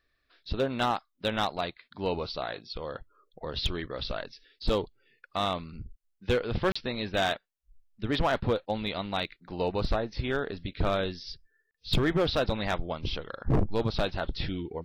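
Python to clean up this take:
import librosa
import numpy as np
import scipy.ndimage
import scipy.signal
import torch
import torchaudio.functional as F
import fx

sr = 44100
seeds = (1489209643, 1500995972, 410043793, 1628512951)

y = fx.fix_declip(x, sr, threshold_db=-19.0)
y = fx.fix_interpolate(y, sr, at_s=(6.72, 11.71), length_ms=35.0)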